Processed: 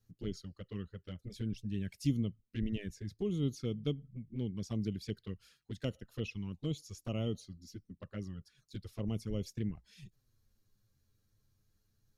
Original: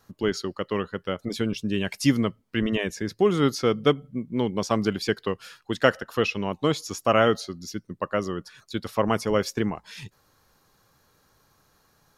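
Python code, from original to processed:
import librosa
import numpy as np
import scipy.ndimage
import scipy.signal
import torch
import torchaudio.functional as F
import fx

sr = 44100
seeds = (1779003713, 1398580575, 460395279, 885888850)

y = fx.env_flanger(x, sr, rest_ms=9.7, full_db=-19.5)
y = fx.tone_stack(y, sr, knobs='10-0-1')
y = y * librosa.db_to_amplitude(7.0)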